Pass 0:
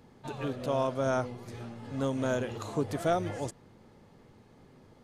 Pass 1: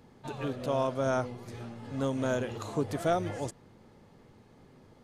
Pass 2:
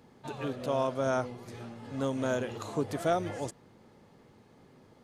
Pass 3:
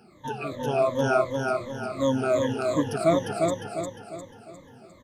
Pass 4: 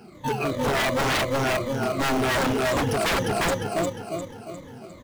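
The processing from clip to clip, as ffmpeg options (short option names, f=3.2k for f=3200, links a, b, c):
-af anull
-af "lowshelf=f=75:g=-10"
-filter_complex "[0:a]afftfilt=real='re*pow(10,23/40*sin(2*PI*(1.1*log(max(b,1)*sr/1024/100)/log(2)-(-2.7)*(pts-256)/sr)))':imag='im*pow(10,23/40*sin(2*PI*(1.1*log(max(b,1)*sr/1024/100)/log(2)-(-2.7)*(pts-256)/sr)))':win_size=1024:overlap=0.75,asplit=2[a][b];[b]aecho=0:1:353|706|1059|1412|1765:0.668|0.287|0.124|0.0531|0.0228[c];[a][c]amix=inputs=2:normalize=0"
-filter_complex "[0:a]asplit=2[a][b];[b]acrusher=samples=25:mix=1:aa=0.000001,volume=-8dB[c];[a][c]amix=inputs=2:normalize=0,aeval=exprs='0.0668*(abs(mod(val(0)/0.0668+3,4)-2)-1)':c=same,volume=5.5dB"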